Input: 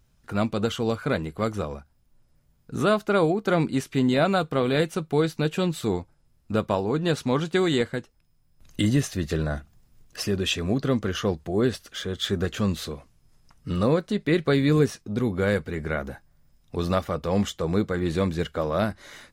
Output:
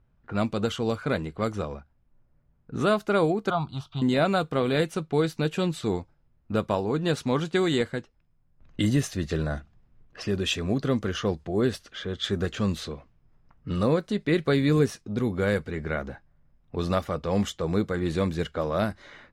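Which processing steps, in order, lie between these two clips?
low-pass that shuts in the quiet parts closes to 1,700 Hz, open at −20.5 dBFS
0:03.50–0:04.02: drawn EQ curve 140 Hz 0 dB, 230 Hz −15 dB, 490 Hz −19 dB, 700 Hz +4 dB, 1,300 Hz +4 dB, 1,900 Hz −27 dB, 3,400 Hz +2 dB, 7,100 Hz −19 dB
level −1.5 dB

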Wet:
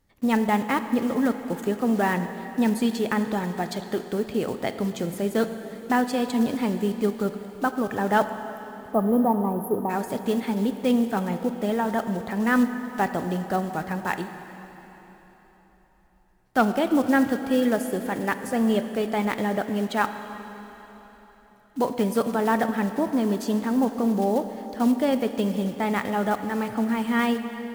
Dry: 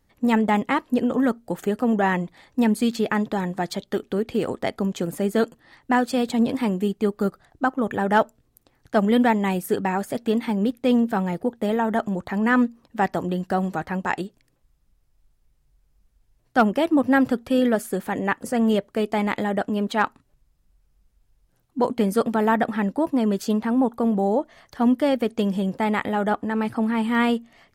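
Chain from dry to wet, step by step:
one scale factor per block 5 bits
gain on a spectral selection 0:08.50–0:09.90, 1,300–9,900 Hz −28 dB
on a send: convolution reverb RT60 4.1 s, pre-delay 3 ms, DRR 8.5 dB
on the sum: level −2.5 dB

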